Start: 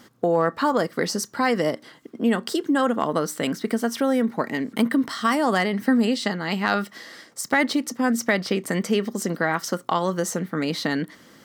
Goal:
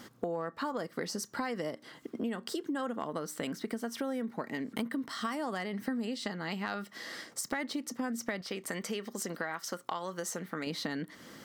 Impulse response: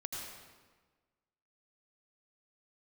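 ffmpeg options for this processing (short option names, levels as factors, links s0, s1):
-filter_complex "[0:a]asettb=1/sr,asplit=3[s0][s1][s2];[s0]atrim=end=8.414[s3];[s1]atrim=start=8.41:end=10.67,asetpts=PTS-STARTPTS,afade=t=in:d=0.004:c=qsin,afade=t=out:st=2.256:d=0.004:c=qsin,equalizer=f=160:w=0.39:g=-8[s4];[s2]atrim=start=10.666[s5];[s3][s4]acrossfade=d=0.004:c1=hsin:c2=qsin[s6];[s6][s5]acrossfade=d=0.004:c1=qsin:c2=hsin,acompressor=threshold=0.0178:ratio=4"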